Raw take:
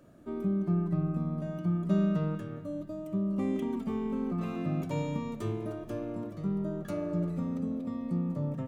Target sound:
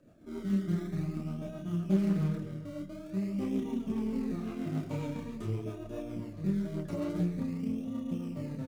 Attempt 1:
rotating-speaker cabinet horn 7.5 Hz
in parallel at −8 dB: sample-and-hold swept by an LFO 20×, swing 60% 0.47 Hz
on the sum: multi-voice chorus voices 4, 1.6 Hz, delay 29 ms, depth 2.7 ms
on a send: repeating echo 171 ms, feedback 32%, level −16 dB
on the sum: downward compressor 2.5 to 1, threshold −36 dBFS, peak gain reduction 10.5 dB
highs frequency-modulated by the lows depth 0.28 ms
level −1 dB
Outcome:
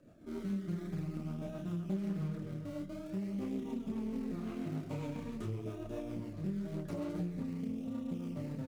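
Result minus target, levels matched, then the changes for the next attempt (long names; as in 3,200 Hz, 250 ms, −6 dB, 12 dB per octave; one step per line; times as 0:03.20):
downward compressor: peak gain reduction +10.5 dB
remove: downward compressor 2.5 to 1, threshold −36 dBFS, peak gain reduction 10.5 dB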